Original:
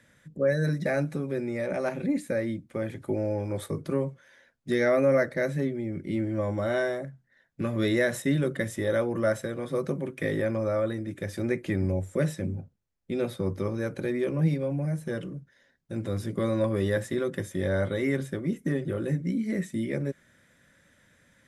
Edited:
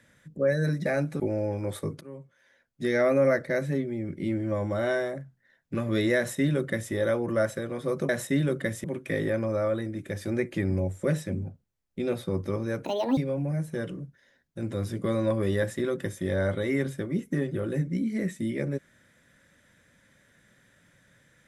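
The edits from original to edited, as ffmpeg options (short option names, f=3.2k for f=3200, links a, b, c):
-filter_complex "[0:a]asplit=7[a][b][c][d][e][f][g];[a]atrim=end=1.202[h];[b]atrim=start=3.068:end=3.88,asetpts=PTS-STARTPTS,afade=t=out:st=0.808:d=0.004:c=hsin:silence=0.0794328[i];[c]atrim=start=3.88:end=9.962,asetpts=PTS-STARTPTS,afade=t=in:d=1.03:silence=0.0794328[j];[d]atrim=start=8.038:end=8.792[k];[e]atrim=start=9.958:end=13.974[l];[f]atrim=start=13.97:end=14.51,asetpts=PTS-STARTPTS,asetrate=73647,aresample=44100[m];[g]atrim=start=14.506[n];[i][j]concat=n=2:v=0:a=1[o];[h][o]acrossfade=d=0.004:c1=hsin:c2=hsin[p];[p][k]acrossfade=d=0.004:c1=hsin:c2=hsin[q];[q][l]acrossfade=d=0.004:c1=hsin:c2=hsin[r];[r][m]acrossfade=d=0.004:c1=hsin:c2=hsin[s];[s][n]acrossfade=d=0.004:c1=hsin:c2=hsin"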